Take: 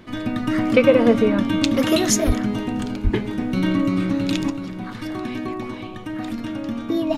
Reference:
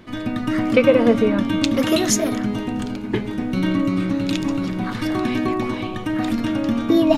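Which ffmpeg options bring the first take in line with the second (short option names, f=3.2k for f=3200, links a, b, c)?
-filter_complex "[0:a]asplit=3[a][b][c];[a]afade=t=out:st=2.26:d=0.02[d];[b]highpass=f=140:w=0.5412,highpass=f=140:w=1.3066,afade=t=in:st=2.26:d=0.02,afade=t=out:st=2.38:d=0.02[e];[c]afade=t=in:st=2.38:d=0.02[f];[d][e][f]amix=inputs=3:normalize=0,asplit=3[g][h][i];[g]afade=t=out:st=3.03:d=0.02[j];[h]highpass=f=140:w=0.5412,highpass=f=140:w=1.3066,afade=t=in:st=3.03:d=0.02,afade=t=out:st=3.15:d=0.02[k];[i]afade=t=in:st=3.15:d=0.02[l];[j][k][l]amix=inputs=3:normalize=0,asetnsamples=n=441:p=0,asendcmd='4.5 volume volume 6.5dB',volume=0dB"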